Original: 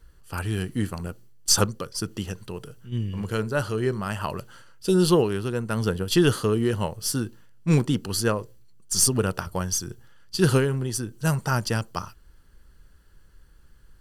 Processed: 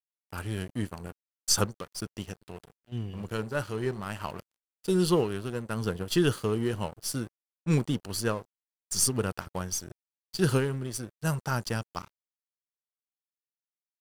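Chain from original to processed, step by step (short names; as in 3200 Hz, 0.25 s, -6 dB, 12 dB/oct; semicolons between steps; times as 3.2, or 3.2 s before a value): crossover distortion -38 dBFS; gain -4.5 dB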